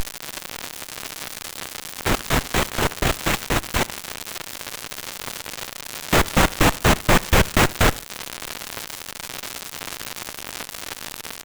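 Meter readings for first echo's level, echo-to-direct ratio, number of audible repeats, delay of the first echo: -22.0 dB, -21.5 dB, 2, 71 ms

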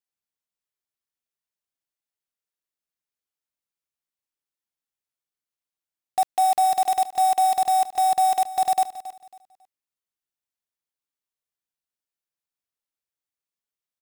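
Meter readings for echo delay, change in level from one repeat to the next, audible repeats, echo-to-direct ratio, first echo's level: 274 ms, -11.0 dB, 2, -15.0 dB, -15.5 dB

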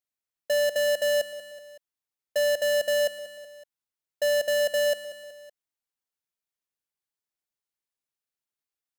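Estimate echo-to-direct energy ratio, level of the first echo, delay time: -13.5 dB, -15.0 dB, 187 ms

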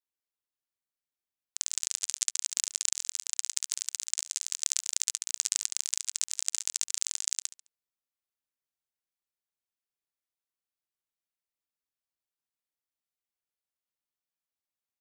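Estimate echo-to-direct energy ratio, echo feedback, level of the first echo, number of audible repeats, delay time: -16.5 dB, 37%, -17.0 dB, 3, 70 ms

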